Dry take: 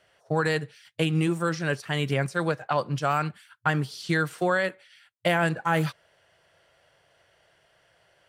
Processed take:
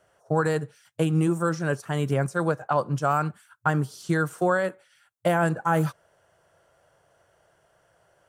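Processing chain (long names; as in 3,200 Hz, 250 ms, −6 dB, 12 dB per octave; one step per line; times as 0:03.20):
flat-topped bell 3,000 Hz −10.5 dB
level +2 dB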